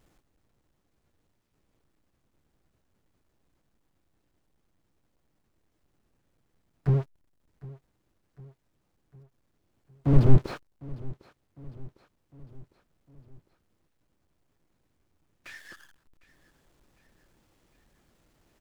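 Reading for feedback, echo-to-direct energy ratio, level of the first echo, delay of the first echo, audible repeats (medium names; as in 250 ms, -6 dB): 55%, -18.5 dB, -20.0 dB, 754 ms, 3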